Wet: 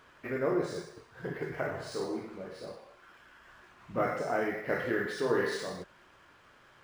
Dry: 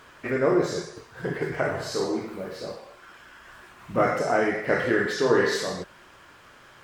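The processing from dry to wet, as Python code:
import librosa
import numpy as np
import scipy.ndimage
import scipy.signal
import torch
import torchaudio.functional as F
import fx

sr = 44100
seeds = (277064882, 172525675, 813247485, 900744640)

y = np.interp(np.arange(len(x)), np.arange(len(x))[::3], x[::3])
y = y * librosa.db_to_amplitude(-8.0)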